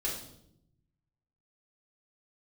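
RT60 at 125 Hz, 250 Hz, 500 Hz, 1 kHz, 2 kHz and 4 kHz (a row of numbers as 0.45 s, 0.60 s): 1.5 s, 1.2 s, 0.90 s, 0.65 s, 0.55 s, 0.60 s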